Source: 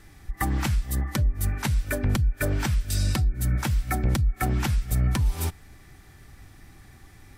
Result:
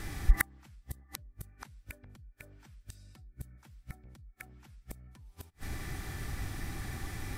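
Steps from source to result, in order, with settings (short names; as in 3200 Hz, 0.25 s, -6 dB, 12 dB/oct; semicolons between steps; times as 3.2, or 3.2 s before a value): flipped gate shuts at -20 dBFS, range -41 dB; gain +10 dB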